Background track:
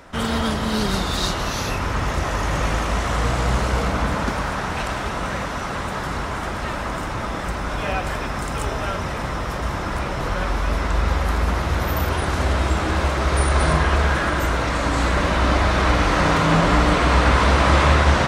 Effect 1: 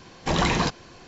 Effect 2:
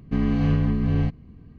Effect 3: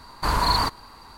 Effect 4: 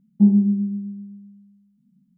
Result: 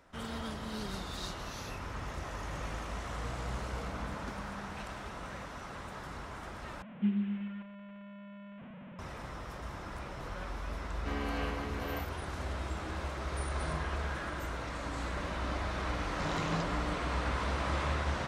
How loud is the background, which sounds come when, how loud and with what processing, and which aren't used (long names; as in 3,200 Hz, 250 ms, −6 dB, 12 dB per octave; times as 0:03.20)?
background track −17.5 dB
0:03.80: mix in 4 −18 dB + downward compressor, threshold −30 dBFS
0:06.82: overwrite with 4 −16 dB + linear delta modulator 16 kbit/s, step −26.5 dBFS
0:10.94: mix in 2 −1.5 dB + Bessel high-pass filter 560 Hz, order 4
0:15.93: mix in 1 −17 dB
not used: 3